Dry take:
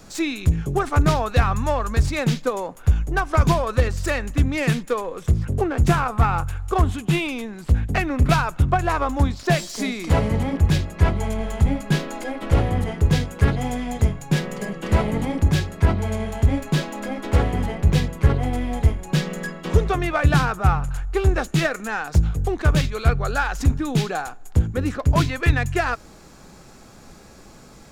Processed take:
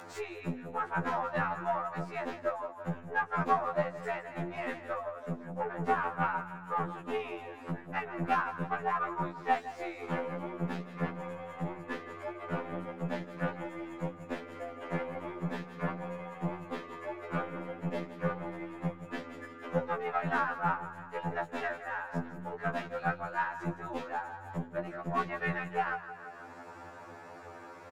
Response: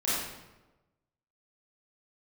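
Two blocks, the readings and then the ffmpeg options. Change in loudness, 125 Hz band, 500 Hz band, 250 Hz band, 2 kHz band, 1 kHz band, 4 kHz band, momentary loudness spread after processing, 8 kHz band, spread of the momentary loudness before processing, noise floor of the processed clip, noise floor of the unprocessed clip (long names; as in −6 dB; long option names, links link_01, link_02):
−14.0 dB, −21.0 dB, −10.5 dB, −14.5 dB, −9.5 dB, −7.5 dB, −20.0 dB, 10 LU, below −25 dB, 6 LU, −49 dBFS, −45 dBFS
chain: -filter_complex "[0:a]aecho=1:1:166|332|498|664:0.266|0.109|0.0447|0.0183,afreqshift=87,aeval=exprs='0.631*(cos(1*acos(clip(val(0)/0.631,-1,1)))-cos(1*PI/2))+0.0631*(cos(3*acos(clip(val(0)/0.631,-1,1)))-cos(3*PI/2))+0.0316*(cos(6*acos(clip(val(0)/0.631,-1,1)))-cos(6*PI/2))+0.0126*(cos(7*acos(clip(val(0)/0.631,-1,1)))-cos(7*PI/2))':channel_layout=same,acrossover=split=480 2100:gain=0.158 1 0.0891[link_01][link_02][link_03];[link_01][link_02][link_03]amix=inputs=3:normalize=0,acompressor=mode=upward:threshold=-30dB:ratio=2.5,afftfilt=real='re*2*eq(mod(b,4),0)':imag='im*2*eq(mod(b,4),0)':win_size=2048:overlap=0.75,volume=-2.5dB"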